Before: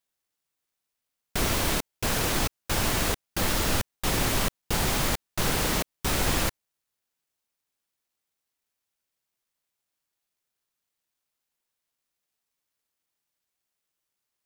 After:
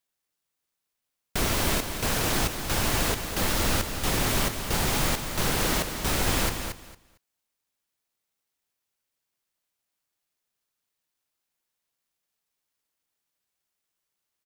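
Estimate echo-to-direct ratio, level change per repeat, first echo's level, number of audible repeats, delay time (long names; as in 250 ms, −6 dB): −7.5 dB, −14.5 dB, −7.5 dB, 2, 227 ms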